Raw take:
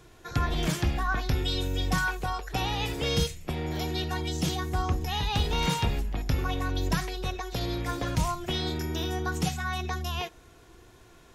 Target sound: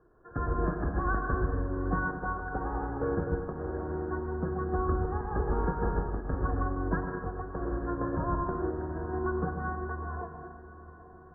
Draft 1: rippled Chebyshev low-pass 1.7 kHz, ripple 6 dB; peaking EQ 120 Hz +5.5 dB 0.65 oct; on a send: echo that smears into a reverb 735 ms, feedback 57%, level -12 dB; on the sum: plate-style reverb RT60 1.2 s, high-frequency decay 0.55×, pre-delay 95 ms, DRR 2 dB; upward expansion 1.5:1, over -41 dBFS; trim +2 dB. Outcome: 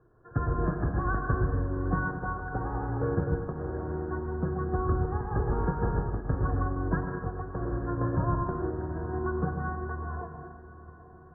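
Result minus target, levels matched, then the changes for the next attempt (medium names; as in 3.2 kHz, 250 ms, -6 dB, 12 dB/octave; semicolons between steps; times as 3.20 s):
125 Hz band +3.0 dB
change: peaking EQ 120 Hz -5 dB 0.65 oct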